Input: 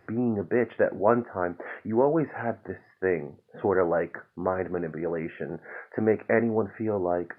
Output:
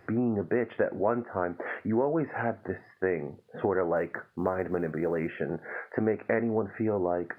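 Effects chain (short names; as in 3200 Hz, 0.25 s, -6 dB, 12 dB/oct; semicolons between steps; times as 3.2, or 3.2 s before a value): compressor 3:1, threshold -28 dBFS, peak gain reduction 10 dB; 3.96–5.29 short-mantissa float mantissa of 6-bit; gain +3 dB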